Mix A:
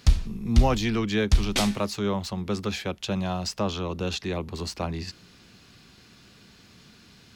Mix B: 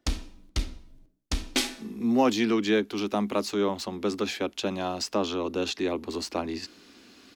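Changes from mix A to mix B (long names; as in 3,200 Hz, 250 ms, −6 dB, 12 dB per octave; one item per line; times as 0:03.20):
speech: entry +1.55 s
master: add low shelf with overshoot 200 Hz −10 dB, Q 3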